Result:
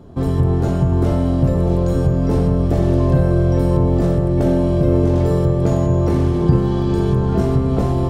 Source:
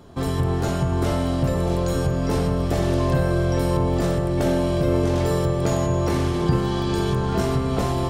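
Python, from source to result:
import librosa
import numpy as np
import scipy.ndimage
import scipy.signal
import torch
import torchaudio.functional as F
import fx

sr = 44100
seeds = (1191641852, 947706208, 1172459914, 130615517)

y = fx.tilt_shelf(x, sr, db=7.0, hz=860.0)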